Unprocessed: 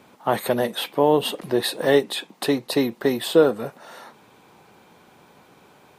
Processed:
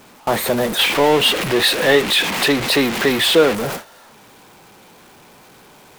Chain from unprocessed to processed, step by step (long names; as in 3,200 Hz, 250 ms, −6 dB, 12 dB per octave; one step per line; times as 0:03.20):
converter with a step at zero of −19.5 dBFS
0:00.79–0:03.55: parametric band 2,400 Hz +9 dB 1.8 octaves
noise gate with hold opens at −19 dBFS